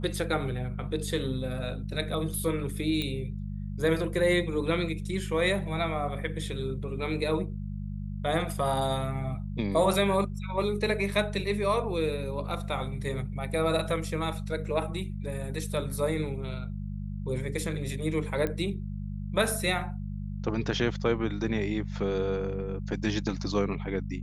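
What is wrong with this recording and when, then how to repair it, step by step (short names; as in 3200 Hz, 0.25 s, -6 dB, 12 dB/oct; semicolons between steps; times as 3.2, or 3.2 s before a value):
hum 50 Hz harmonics 4 -35 dBFS
3.02 pop -18 dBFS
18.47 pop -18 dBFS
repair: de-click; de-hum 50 Hz, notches 4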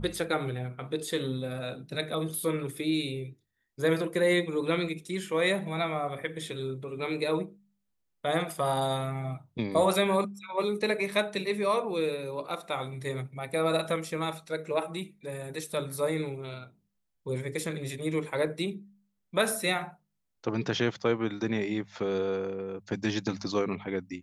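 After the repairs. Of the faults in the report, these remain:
none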